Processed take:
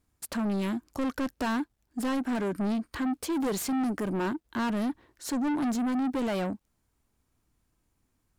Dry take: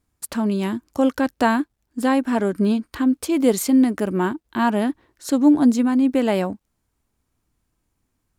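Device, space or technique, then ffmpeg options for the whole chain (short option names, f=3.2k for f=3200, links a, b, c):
saturation between pre-emphasis and de-emphasis: -af "highshelf=f=4.8k:g=7.5,asoftclip=type=tanh:threshold=-24.5dB,highshelf=f=4.8k:g=-7.5,volume=-1.5dB"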